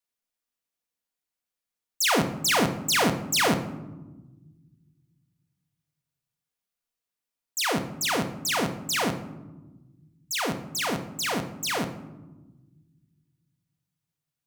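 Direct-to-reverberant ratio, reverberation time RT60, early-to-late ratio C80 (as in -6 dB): 6.0 dB, 1.2 s, 13.5 dB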